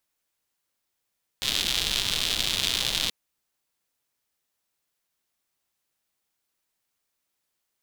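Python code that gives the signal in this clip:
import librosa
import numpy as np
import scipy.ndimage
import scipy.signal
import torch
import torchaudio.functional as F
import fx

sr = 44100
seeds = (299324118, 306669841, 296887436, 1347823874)

y = fx.rain(sr, seeds[0], length_s=1.68, drops_per_s=180.0, hz=3500.0, bed_db=-9.0)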